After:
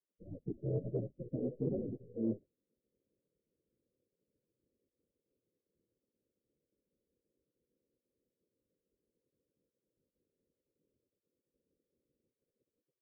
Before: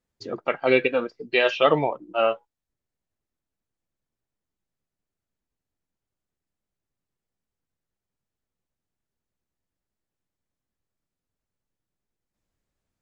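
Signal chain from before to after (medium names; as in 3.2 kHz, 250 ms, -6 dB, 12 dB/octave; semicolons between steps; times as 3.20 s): spectral gate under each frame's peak -20 dB weak; steep low-pass 540 Hz 72 dB/octave; reverse; compression 6:1, threshold -45 dBFS, peak gain reduction 9 dB; reverse; trim +14 dB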